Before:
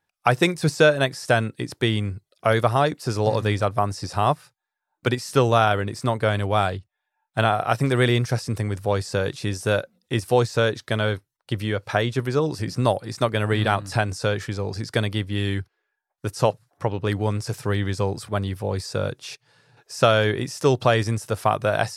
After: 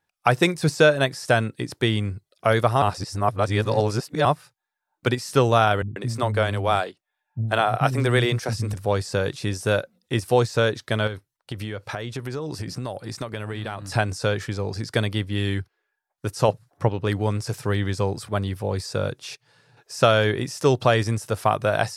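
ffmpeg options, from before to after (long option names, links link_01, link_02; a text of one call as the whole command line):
ffmpeg -i in.wav -filter_complex "[0:a]asettb=1/sr,asplit=3[link_01][link_02][link_03];[link_01]atrim=end=5.824[link_04];[link_02]atrim=start=5.82:end=8.74,asetpts=PTS-STARTPTS,afade=type=in:duration=0.004:curve=qsin,afade=type=out:start_time=2.916:duration=0.004:curve=qsin,acrossover=split=230[link_05][link_06];[link_06]adelay=140[link_07];[link_05][link_07]amix=inputs=2:normalize=0,atrim=end_sample=128772[link_08];[link_03]atrim=start=8.736[link_09];[link_04][link_08]acrossfade=duration=0.004:curve1=hsin:curve2=qsin[link_10];[link_10][link_09]acrossfade=duration=0.004:curve1=qsin:curve2=hsin,asettb=1/sr,asplit=3[link_11][link_12][link_13];[link_11]atrim=end=11.074[link_14];[link_12]atrim=start=11.07:end=13.87,asetpts=PTS-STARTPTS,afade=type=in:duration=0.004:curve=qsin,afade=type=out:start_time=2.796:duration=0.004:curve=qsin,acompressor=threshold=-26dB:ratio=6:attack=3.2:release=140:knee=1:detection=peak[link_15];[link_13]atrim=start=13.866[link_16];[link_14][link_15]acrossfade=duration=0.004:curve1=hsin:curve2=qsin[link_17];[link_17][link_16]acrossfade=duration=0.004:curve1=qsin:curve2=hsin,asettb=1/sr,asplit=3[link_18][link_19][link_20];[link_18]atrim=end=16.484[link_21];[link_19]atrim=start=16.48:end=16.89,asetpts=PTS-STARTPTS,afade=type=in:duration=0.004:curve=qsin,afade=type=out:start_time=0.406:duration=0.004:curve=qsin,lowshelf=frequency=380:gain=6[link_22];[link_20]atrim=start=16.886[link_23];[link_21][link_22]acrossfade=duration=0.004:curve1=hsin:curve2=qsin[link_24];[link_24][link_23]acrossfade=duration=0.004:curve1=qsin:curve2=hsin,asplit=3[link_25][link_26][link_27];[link_25]atrim=end=2.822[link_28];[link_26]atrim=start=2.818:end=4.252,asetpts=PTS-STARTPTS,areverse[link_29];[link_27]atrim=start=4.248[link_30];[link_28][link_29]acrossfade=duration=0.004:curve1=hsin:curve2=hsin[link_31];[link_31][link_30]acrossfade=duration=0.004:curve1=hsin:curve2=hsin" out.wav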